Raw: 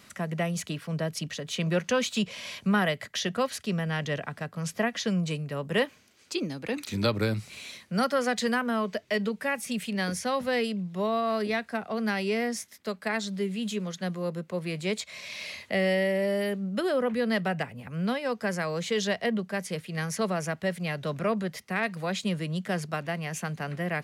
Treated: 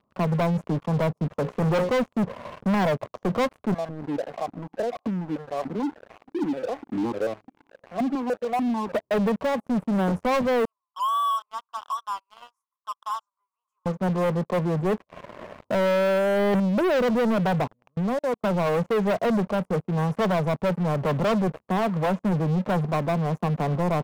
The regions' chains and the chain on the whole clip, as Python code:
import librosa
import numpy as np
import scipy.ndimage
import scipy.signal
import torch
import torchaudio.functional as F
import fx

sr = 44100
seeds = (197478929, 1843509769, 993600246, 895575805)

y = fx.chain(x, sr, fx.peak_eq(hz=1600.0, db=10.0, octaves=2.0),
    fx.hum_notches(base_hz=60, count=9), at=(1.33, 1.89))
y = fx.chain(y, sr, fx.zero_step(step_db=-31.5),
    fx.vowel_held(hz=6.8), at=(3.74, 8.92))
y = fx.chain(y, sr, fx.cheby1_highpass(hz=1000.0, order=5),
    fx.high_shelf(hz=8600.0, db=11.5), at=(10.65, 13.86))
y = fx.chain(y, sr, fx.lowpass(hz=2700.0, slope=12),
    fx.peak_eq(hz=340.0, db=11.5, octaves=0.28),
    fx.transient(attack_db=5, sustain_db=-9), at=(14.98, 15.45))
y = fx.chain(y, sr, fx.over_compress(threshold_db=-31.0, ratio=-0.5),
    fx.leveller(passes=2), at=(16.18, 16.6))
y = fx.chain(y, sr, fx.low_shelf(hz=230.0, db=-5.0),
    fx.level_steps(step_db=17),
    fx.upward_expand(threshold_db=-46.0, expansion=1.5), at=(17.67, 18.44))
y = scipy.signal.sosfilt(scipy.signal.ellip(4, 1.0, 40, 1100.0, 'lowpass', fs=sr, output='sos'), y)
y = fx.low_shelf(y, sr, hz=480.0, db=-3.0)
y = fx.leveller(y, sr, passes=5)
y = y * 10.0 ** (-2.5 / 20.0)